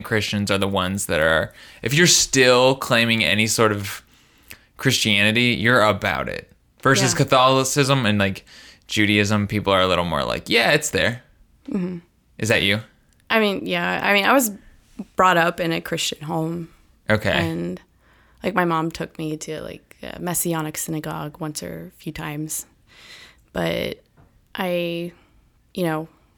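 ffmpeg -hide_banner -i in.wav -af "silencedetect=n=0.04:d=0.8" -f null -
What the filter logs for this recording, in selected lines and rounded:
silence_start: 22.62
silence_end: 23.56 | silence_duration: 0.94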